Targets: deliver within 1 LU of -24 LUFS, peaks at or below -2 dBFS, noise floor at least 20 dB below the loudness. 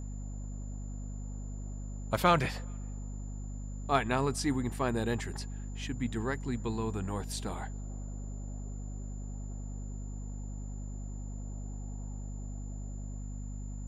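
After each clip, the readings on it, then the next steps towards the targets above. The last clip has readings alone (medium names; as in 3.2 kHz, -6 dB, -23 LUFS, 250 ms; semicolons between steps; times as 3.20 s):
hum 50 Hz; highest harmonic 250 Hz; hum level -37 dBFS; steady tone 7.1 kHz; tone level -56 dBFS; loudness -36.5 LUFS; peak level -12.5 dBFS; loudness target -24.0 LUFS
-> de-hum 50 Hz, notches 5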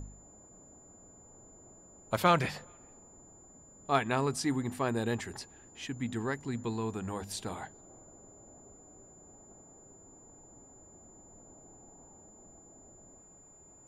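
hum not found; steady tone 7.1 kHz; tone level -56 dBFS
-> band-stop 7.1 kHz, Q 30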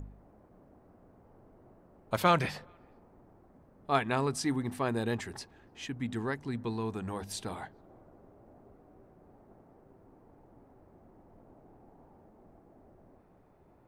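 steady tone not found; loudness -33.0 LUFS; peak level -13.0 dBFS; loudness target -24.0 LUFS
-> trim +9 dB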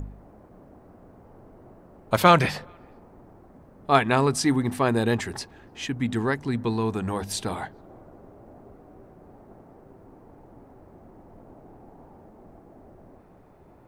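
loudness -24.0 LUFS; peak level -4.0 dBFS; noise floor -52 dBFS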